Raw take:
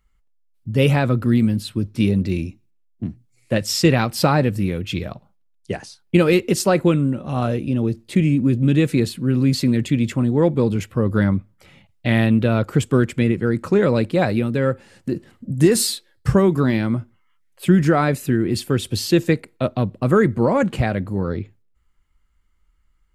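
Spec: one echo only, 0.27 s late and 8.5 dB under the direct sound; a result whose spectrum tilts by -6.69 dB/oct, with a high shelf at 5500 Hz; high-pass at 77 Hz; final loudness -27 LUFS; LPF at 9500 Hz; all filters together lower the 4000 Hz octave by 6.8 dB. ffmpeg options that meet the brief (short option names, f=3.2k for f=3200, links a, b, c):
-af "highpass=77,lowpass=9.5k,equalizer=f=4k:t=o:g=-5,highshelf=f=5.5k:g=-8,aecho=1:1:270:0.376,volume=-7.5dB"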